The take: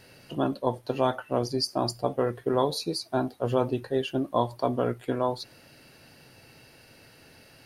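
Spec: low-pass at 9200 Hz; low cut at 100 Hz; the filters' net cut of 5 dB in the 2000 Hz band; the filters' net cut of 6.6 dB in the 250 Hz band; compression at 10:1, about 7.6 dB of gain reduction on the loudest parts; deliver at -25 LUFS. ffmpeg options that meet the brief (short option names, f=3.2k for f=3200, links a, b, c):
-af "highpass=100,lowpass=9.2k,equalizer=f=250:t=o:g=-8,equalizer=f=2k:t=o:g=-7.5,acompressor=threshold=-29dB:ratio=10,volume=11dB"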